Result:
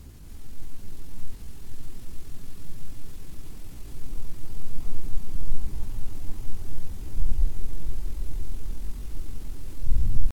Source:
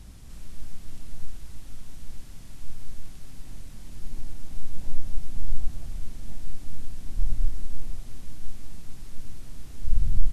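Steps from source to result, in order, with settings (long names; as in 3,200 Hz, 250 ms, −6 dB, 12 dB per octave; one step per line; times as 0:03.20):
echo that builds up and dies away 158 ms, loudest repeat 5, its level −11 dB
pitch shifter +4.5 semitones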